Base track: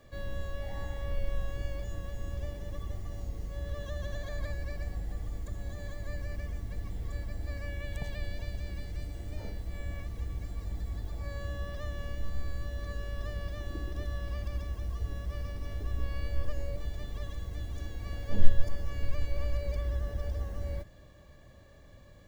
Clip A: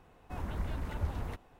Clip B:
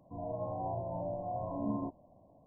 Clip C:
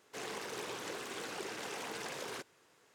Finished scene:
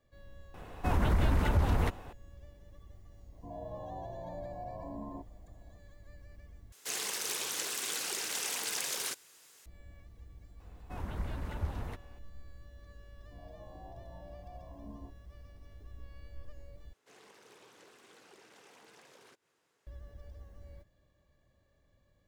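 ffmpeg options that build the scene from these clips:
-filter_complex "[1:a]asplit=2[a][b];[2:a]asplit=2[c][d];[3:a]asplit=2[e][f];[0:a]volume=-16dB[g];[a]alimiter=level_in=29dB:limit=-1dB:release=50:level=0:latency=1[h];[c]acrossover=split=220|640[i][j][k];[i]acompressor=threshold=-48dB:ratio=4[l];[j]acompressor=threshold=-44dB:ratio=4[m];[k]acompressor=threshold=-45dB:ratio=4[n];[l][m][n]amix=inputs=3:normalize=0[o];[e]crystalizer=i=8:c=0[p];[d]bandreject=f=970:w=22[q];[f]acompressor=mode=upward:threshold=-51dB:ratio=2.5:attack=3.2:release=140:knee=2.83:detection=peak[r];[g]asplit=3[s][t][u];[s]atrim=end=6.724[v];[p]atrim=end=2.94,asetpts=PTS-STARTPTS,volume=-4.5dB[w];[t]atrim=start=9.656:end=16.934[x];[r]atrim=end=2.94,asetpts=PTS-STARTPTS,volume=-16.5dB[y];[u]atrim=start=19.866[z];[h]atrim=end=1.59,asetpts=PTS-STARTPTS,volume=-17.5dB,afade=t=in:d=0.004:c=hsin,afade=t=out:st=1.586:d=0.004:c=hsin,adelay=540[aa];[o]atrim=end=2.46,asetpts=PTS-STARTPTS,volume=-2dB,afade=t=in:d=0.004:c=hsin,afade=t=out:st=2.456:d=0.004:c=hsin,adelay=3320[ab];[b]atrim=end=1.59,asetpts=PTS-STARTPTS,volume=-1.5dB,afade=t=in:d=0.004:c=hsin,afade=t=out:st=1.586:d=0.004:c=hsin,adelay=10600[ac];[q]atrim=end=2.46,asetpts=PTS-STARTPTS,volume=-14.5dB,afade=t=in:d=0.004:c=hsin,afade=t=out:st=2.456:d=0.004:c=hsin,adelay=13200[ad];[v][w]acrossfade=d=0.004:c1=hsin:c2=hsin[ae];[ae][x]acrossfade=d=0.004:c1=hsin:c2=hsin[af];[af][y]acrossfade=d=0.004:c1=hsin:c2=hsin[ag];[ag][z]acrossfade=d=0.004:c1=hsin:c2=hsin[ah];[ah][aa][ab][ac][ad]amix=inputs=5:normalize=0"

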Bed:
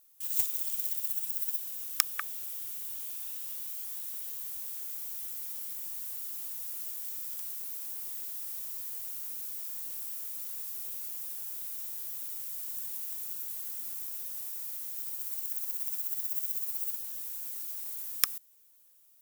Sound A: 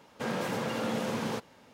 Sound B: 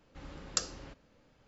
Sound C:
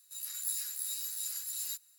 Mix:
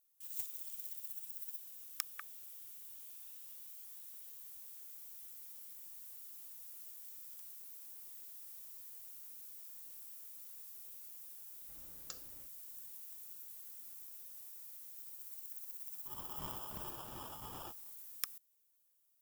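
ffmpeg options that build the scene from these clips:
-filter_complex "[0:a]volume=-13dB[a];[3:a]acrusher=samples=21:mix=1:aa=0.000001[b];[2:a]atrim=end=1.47,asetpts=PTS-STARTPTS,volume=-17.5dB,afade=t=in:d=0.004:c=hsin,afade=t=out:st=1.466:d=0.004:c=hsin,adelay=11530[c];[b]atrim=end=1.98,asetpts=PTS-STARTPTS,volume=-12dB,afade=t=in:d=0.004:c=hsin,afade=t=out:st=1.976:d=0.004:c=hsin,adelay=15950[d];[a][c][d]amix=inputs=3:normalize=0"

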